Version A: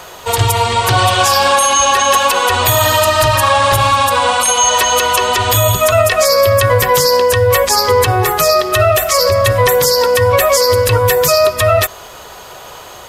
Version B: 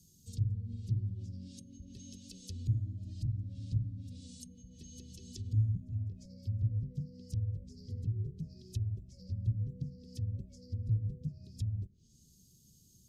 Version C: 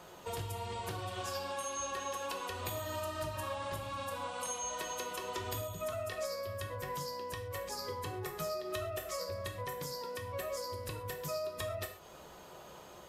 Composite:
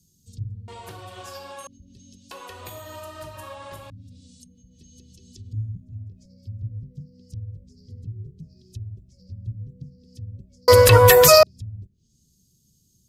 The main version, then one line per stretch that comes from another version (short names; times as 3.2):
B
0.68–1.67 from C
2.31–3.9 from C
10.68–11.43 from A